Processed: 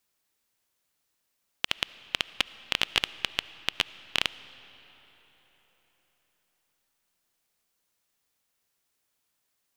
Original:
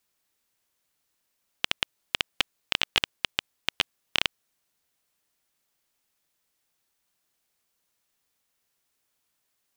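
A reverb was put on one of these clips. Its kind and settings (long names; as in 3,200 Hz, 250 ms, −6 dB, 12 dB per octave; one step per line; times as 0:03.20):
comb and all-pass reverb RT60 4.5 s, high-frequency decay 0.7×, pre-delay 30 ms, DRR 16.5 dB
level −1 dB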